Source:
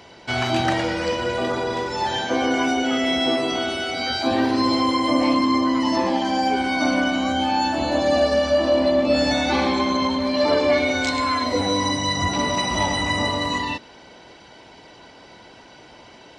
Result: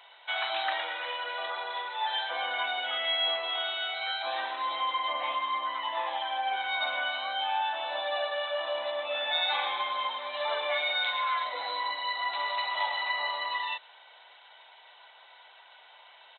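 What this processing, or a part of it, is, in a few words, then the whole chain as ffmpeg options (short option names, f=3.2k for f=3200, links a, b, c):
musical greeting card: -af "aresample=8000,aresample=44100,highpass=f=740:w=0.5412,highpass=f=740:w=1.3066,equalizer=f=3.7k:t=o:w=0.22:g=11.5,volume=-6dB"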